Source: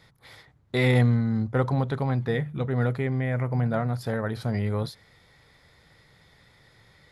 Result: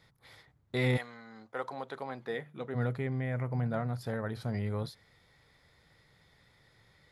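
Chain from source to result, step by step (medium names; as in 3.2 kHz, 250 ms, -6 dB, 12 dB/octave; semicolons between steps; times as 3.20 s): 0.96–2.74 s: high-pass 900 Hz -> 250 Hz 12 dB/octave; trim -7 dB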